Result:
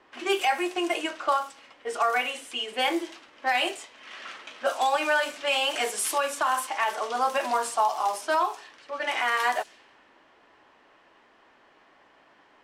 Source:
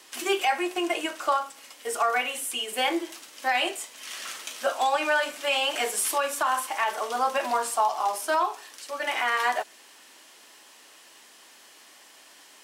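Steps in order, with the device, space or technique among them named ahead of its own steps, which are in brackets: cassette deck with a dynamic noise filter (white noise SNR 33 dB; low-pass opened by the level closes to 1400 Hz, open at -22 dBFS)

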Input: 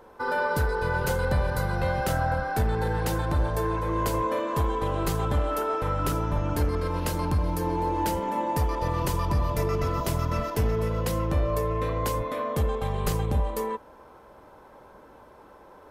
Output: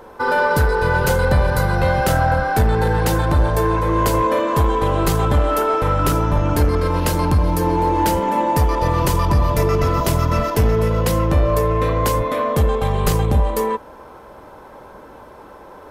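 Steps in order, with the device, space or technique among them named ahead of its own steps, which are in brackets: parallel distortion (in parallel at -11 dB: hard clip -28 dBFS, distortion -8 dB); on the sum: gain +8 dB

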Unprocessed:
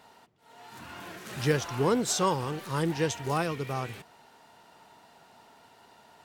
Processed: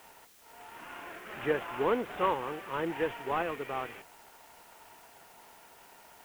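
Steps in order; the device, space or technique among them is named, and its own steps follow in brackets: army field radio (BPF 350–3200 Hz; CVSD 16 kbps; white noise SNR 24 dB)

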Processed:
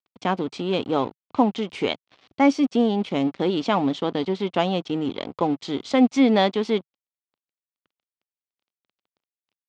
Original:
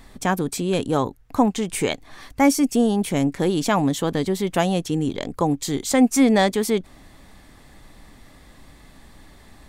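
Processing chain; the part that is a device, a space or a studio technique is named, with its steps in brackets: blown loudspeaker (crossover distortion -37 dBFS; speaker cabinet 130–4500 Hz, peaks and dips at 150 Hz -7 dB, 1700 Hz -7 dB, 3100 Hz +3 dB)

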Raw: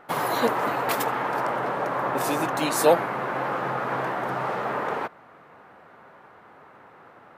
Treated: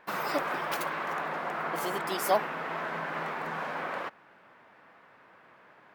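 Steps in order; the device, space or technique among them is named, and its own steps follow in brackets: nightcore (varispeed +24%); gain -7 dB

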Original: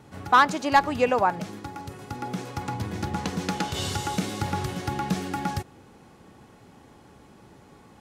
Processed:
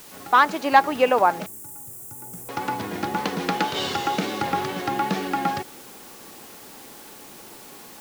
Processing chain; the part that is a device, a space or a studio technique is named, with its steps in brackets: dictaphone (BPF 270–4100 Hz; AGC gain up to 6.5 dB; wow and flutter; white noise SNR 20 dB); 1.46–2.49 EQ curve 120 Hz 0 dB, 220 Hz -15 dB, 4100 Hz -24 dB, 7800 Hz +7 dB

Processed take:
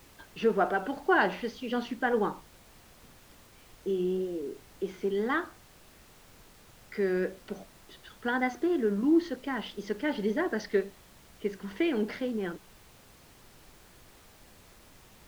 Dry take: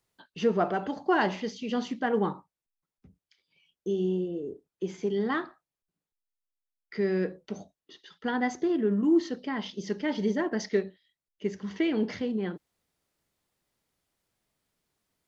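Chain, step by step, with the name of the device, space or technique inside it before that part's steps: horn gramophone (BPF 230–4200 Hz; bell 1500 Hz +6.5 dB 0.2 oct; wow and flutter; pink noise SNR 23 dB)

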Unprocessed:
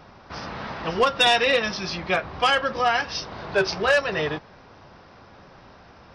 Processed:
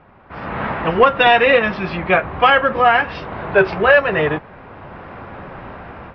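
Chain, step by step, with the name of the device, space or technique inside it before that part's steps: action camera in a waterproof case (LPF 2600 Hz 24 dB/oct; AGC gain up to 16 dB; gain -1 dB; AAC 96 kbps 24000 Hz)

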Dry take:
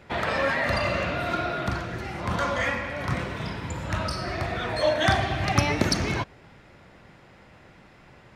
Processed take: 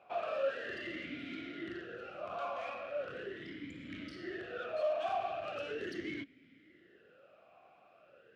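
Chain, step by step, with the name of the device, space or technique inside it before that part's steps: talk box (tube stage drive 28 dB, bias 0.4; vowel sweep a-i 0.39 Hz); gain +3 dB

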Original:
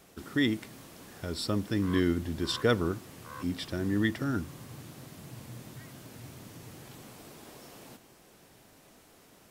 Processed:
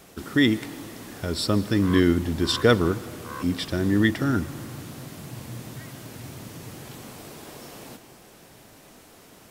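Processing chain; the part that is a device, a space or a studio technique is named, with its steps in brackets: saturated reverb return (on a send at -13.5 dB: reverb RT60 2.0 s, pre-delay 0.119 s + soft clip -30.5 dBFS, distortion -8 dB); on the sum: gain +7.5 dB

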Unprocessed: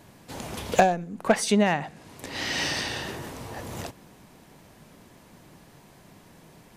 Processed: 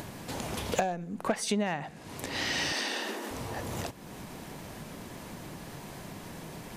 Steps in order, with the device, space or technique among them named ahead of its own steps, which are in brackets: upward and downward compression (upward compressor, threshold -33 dBFS; compressor 3:1, threshold -28 dBFS, peak gain reduction 11.5 dB); 2.72–3.31 steep high-pass 200 Hz 96 dB/oct

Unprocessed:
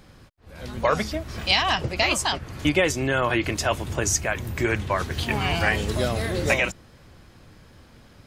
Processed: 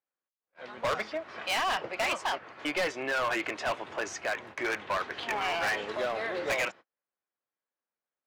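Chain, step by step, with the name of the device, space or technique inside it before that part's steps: walkie-talkie (BPF 580–2300 Hz; hard clip -25.5 dBFS, distortion -7 dB; gate -46 dBFS, range -38 dB)

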